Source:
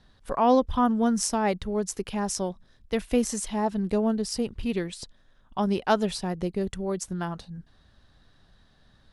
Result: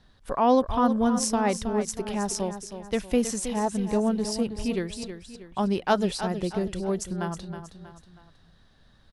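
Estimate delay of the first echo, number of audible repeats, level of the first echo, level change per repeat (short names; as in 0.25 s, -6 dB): 0.319 s, 3, -10.0 dB, -7.0 dB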